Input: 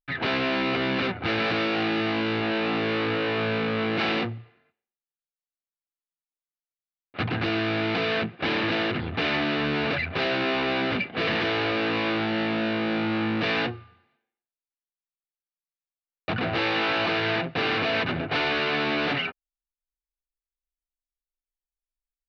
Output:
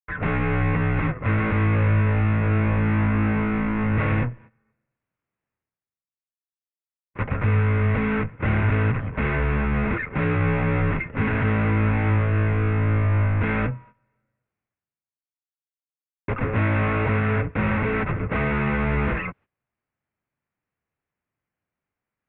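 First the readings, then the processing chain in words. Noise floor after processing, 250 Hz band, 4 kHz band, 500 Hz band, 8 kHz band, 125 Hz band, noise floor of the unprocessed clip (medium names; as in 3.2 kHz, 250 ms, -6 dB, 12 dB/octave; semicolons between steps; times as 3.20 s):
under -85 dBFS, +2.5 dB, under -15 dB, -1.0 dB, no reading, +14.5 dB, under -85 dBFS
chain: mistuned SSB -230 Hz 240–2600 Hz; gate -49 dBFS, range -37 dB; reverse; upward compressor, threshold -50 dBFS; reverse; peaking EQ 110 Hz +11 dB 2.2 oct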